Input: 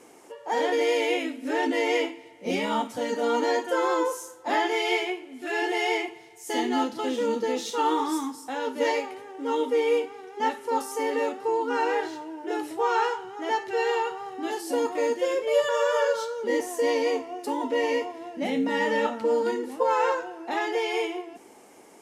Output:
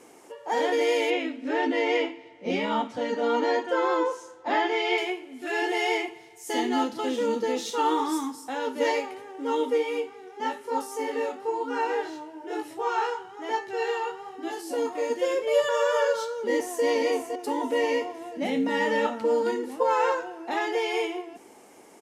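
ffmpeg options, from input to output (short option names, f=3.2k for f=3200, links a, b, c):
-filter_complex "[0:a]asettb=1/sr,asplit=3[a][b][c];[a]atrim=end=1.104[d];[b]atrim=start=1.1:end=4.98,asetpts=PTS-STARTPTS,afade=t=in:d=0.004:c=qsin,afade=t=out:st=3.876:d=0.004:c=qsin,lowpass=4.4k[e];[c]atrim=start=4.976[f];[d][e]acrossfade=d=0.004:c1=hsin:c2=qsin[g];[g][f]acrossfade=d=0.004:c1=qsin:c2=hsin,asplit=3[h][i][j];[h]afade=t=out:st=9.77:d=0.02[k];[i]flanger=delay=17.5:depth=5.8:speed=1.1,afade=t=in:st=9.77:d=0.02,afade=t=out:st=15.09:d=0.02[l];[j]afade=t=in:st=15.09:d=0.02[m];[k][l][m]amix=inputs=3:normalize=0,asplit=2[n][o];[o]afade=t=in:st=16.37:d=0.01,afade=t=out:st=16.84:d=0.01,aecho=0:1:510|1020|1530|2040|2550:0.398107|0.179148|0.0806167|0.0362775|0.0163249[p];[n][p]amix=inputs=2:normalize=0"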